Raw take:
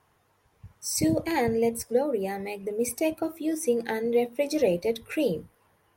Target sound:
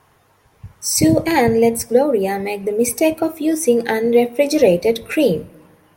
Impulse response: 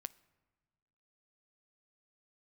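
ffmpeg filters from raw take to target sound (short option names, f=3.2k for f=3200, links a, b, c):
-filter_complex "[0:a]asplit=2[a][b];[1:a]atrim=start_sample=2205[c];[b][c]afir=irnorm=-1:irlink=0,volume=18dB[d];[a][d]amix=inputs=2:normalize=0,volume=-4.5dB"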